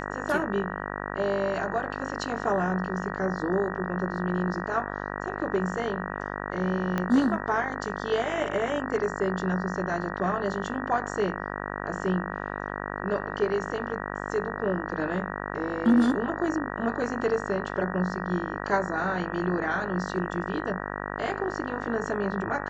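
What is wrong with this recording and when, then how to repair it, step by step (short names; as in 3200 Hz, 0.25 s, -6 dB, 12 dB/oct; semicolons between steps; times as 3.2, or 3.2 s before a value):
buzz 50 Hz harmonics 38 -34 dBFS
6.98 pop -15 dBFS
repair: de-click; de-hum 50 Hz, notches 38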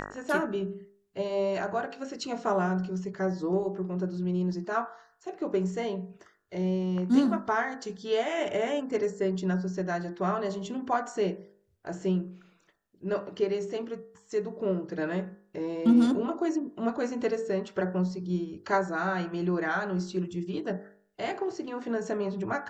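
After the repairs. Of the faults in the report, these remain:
6.98 pop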